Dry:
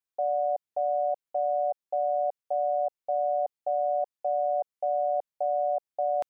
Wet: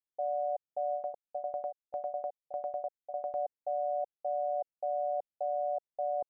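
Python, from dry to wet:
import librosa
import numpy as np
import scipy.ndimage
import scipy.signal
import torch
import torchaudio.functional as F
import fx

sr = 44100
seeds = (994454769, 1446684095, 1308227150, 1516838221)

y = scipy.signal.sosfilt(scipy.signal.butter(6, 850.0, 'lowpass', fs=sr, output='sos'), x)
y = fx.tremolo_shape(y, sr, shape='saw_down', hz=10.0, depth_pct=90, at=(0.94, 3.35))
y = F.gain(torch.from_numpy(y), -5.5).numpy()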